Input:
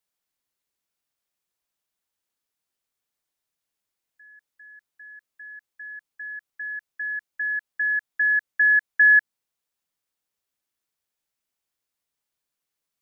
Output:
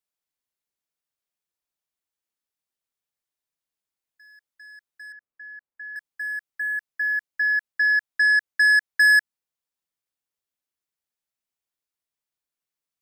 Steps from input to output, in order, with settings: waveshaping leveller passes 2; 5.12–5.96 s: low-pass 1.5 kHz 12 dB/octave; trim -2 dB

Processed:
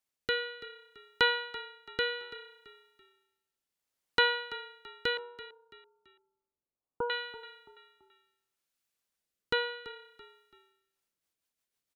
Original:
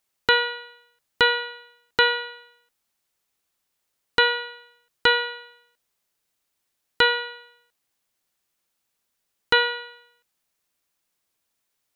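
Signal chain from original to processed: 5.17–7.10 s: elliptic low-pass 1.2 kHz, stop band 40 dB; rotary cabinet horn 0.65 Hz, later 6.7 Hz, at 10.59 s; frequency-shifting echo 334 ms, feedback 37%, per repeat -30 Hz, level -16 dB; trim -6.5 dB

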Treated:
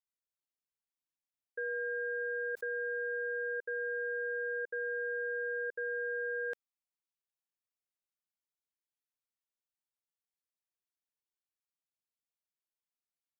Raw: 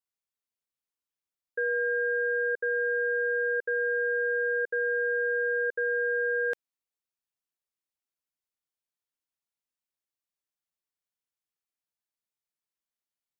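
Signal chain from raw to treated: 2.21–3.15 s: level flattener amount 70%; trim -8.5 dB

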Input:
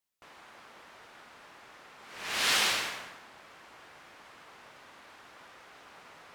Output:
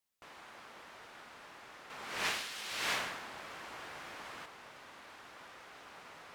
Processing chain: 1.90–4.46 s: compressor with a negative ratio -38 dBFS, ratio -1

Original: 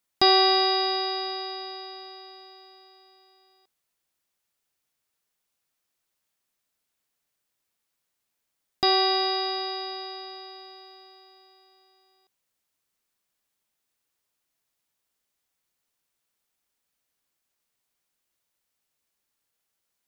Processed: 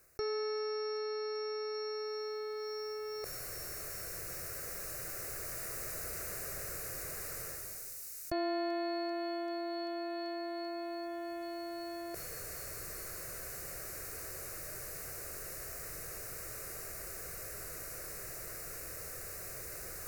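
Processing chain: Doppler pass-by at 5.97 s, 39 m/s, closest 16 m; tilt shelf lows +6 dB, about 700 Hz; reverse; upward compressor, threshold -45 dBFS; reverse; static phaser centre 900 Hz, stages 6; feedback echo behind a high-pass 389 ms, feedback 71%, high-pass 4.1 kHz, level -12 dB; level flattener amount 70%; trim +5.5 dB

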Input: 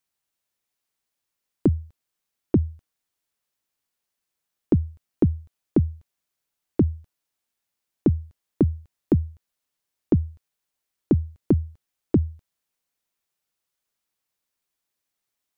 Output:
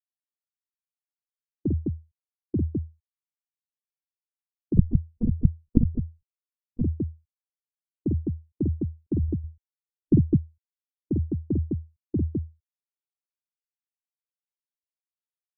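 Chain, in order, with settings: 9.23–10.16 s: tilt EQ -2.5 dB/octave; loudspeakers at several distances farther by 17 m -2 dB, 71 m -1 dB; 4.77–6.84 s: monotone LPC vocoder at 8 kHz 240 Hz; spectral contrast expander 1.5:1; trim -5.5 dB

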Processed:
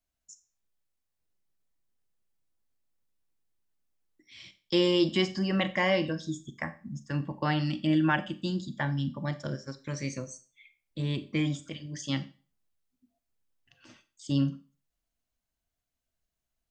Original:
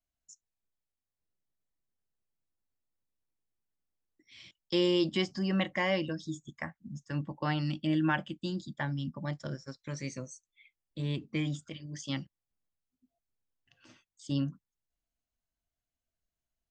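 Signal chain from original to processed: Schroeder reverb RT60 0.36 s, combs from 29 ms, DRR 12 dB; trim +3.5 dB

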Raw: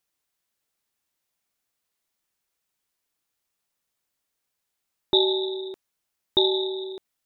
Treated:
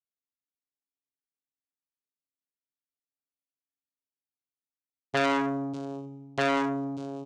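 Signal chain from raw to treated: gate -25 dBFS, range -22 dB; tilt EQ -2 dB/octave; comb 5.7 ms, depth 80%; vocoder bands 4, saw 138 Hz; on a send: delay 592 ms -16.5 dB; on the sum: FDN reverb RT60 1.4 s, low-frequency decay 1.35×, high-frequency decay 0.65×, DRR 11 dB; transformer saturation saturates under 1.8 kHz; trim -4 dB

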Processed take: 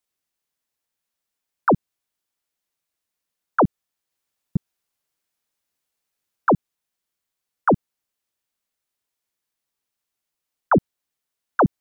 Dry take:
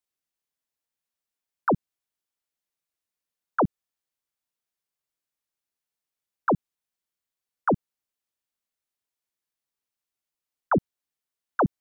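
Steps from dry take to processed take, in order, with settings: 3.64–6.53 s: chunks repeated in reverse 465 ms, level -1 dB; trim +5.5 dB

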